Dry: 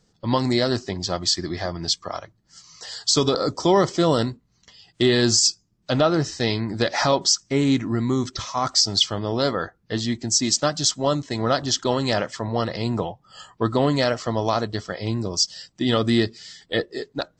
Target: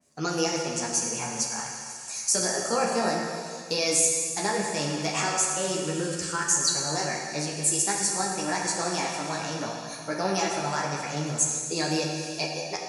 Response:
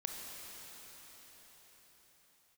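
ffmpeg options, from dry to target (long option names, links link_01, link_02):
-filter_complex "[0:a]highpass=77,highshelf=frequency=2300:gain=10,asplit=2[link_01][link_02];[link_02]acompressor=threshold=-29dB:ratio=6,volume=0dB[link_03];[link_01][link_03]amix=inputs=2:normalize=0,flanger=delay=16:depth=7.4:speed=0.12[link_04];[1:a]atrim=start_sample=2205,asetrate=88200,aresample=44100[link_05];[link_04][link_05]afir=irnorm=-1:irlink=0,asetrate=59535,aresample=44100,adynamicequalizer=threshold=0.0158:dfrequency=3400:dqfactor=0.7:tfrequency=3400:tqfactor=0.7:attack=5:release=100:ratio=0.375:range=2.5:mode=cutabove:tftype=highshelf"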